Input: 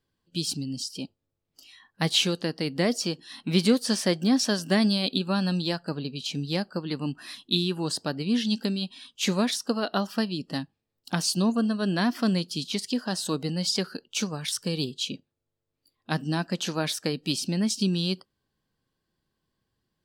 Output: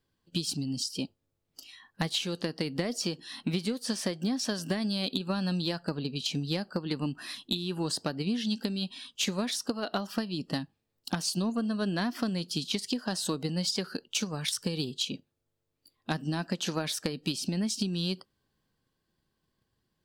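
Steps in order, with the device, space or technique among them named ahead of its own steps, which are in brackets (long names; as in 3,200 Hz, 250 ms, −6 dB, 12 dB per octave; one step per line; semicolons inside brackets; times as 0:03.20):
drum-bus smash (transient designer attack +6 dB, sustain +2 dB; downward compressor 12 to 1, threshold −26 dBFS, peak gain reduction 14.5 dB; soft clipping −17 dBFS, distortion −24 dB)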